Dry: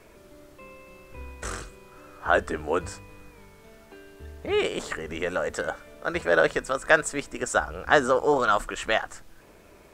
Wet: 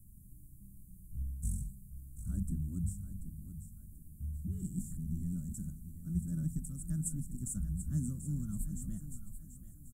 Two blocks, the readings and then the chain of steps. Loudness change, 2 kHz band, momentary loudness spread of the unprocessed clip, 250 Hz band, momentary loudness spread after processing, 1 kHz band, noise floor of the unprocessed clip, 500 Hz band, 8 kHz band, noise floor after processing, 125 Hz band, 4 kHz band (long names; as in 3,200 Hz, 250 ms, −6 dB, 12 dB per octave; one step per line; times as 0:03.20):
−14.0 dB, below −40 dB, 17 LU, −4.5 dB, 17 LU, below −40 dB, −53 dBFS, below −40 dB, −7.0 dB, −55 dBFS, +5.5 dB, below −40 dB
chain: inverse Chebyshev band-stop filter 430–4,500 Hz, stop band 50 dB
repeating echo 736 ms, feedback 38%, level −11 dB
dynamic equaliser 190 Hz, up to +7 dB, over −58 dBFS, Q 1.8
level +3 dB